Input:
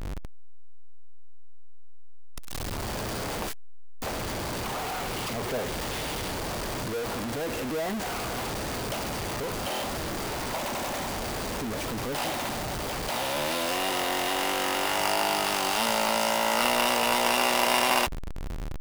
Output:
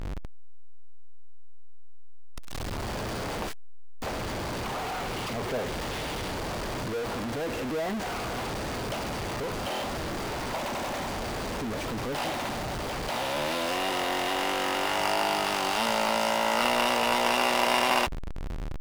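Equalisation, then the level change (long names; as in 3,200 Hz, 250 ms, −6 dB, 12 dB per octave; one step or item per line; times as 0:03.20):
high-shelf EQ 7,300 Hz −9.5 dB
0.0 dB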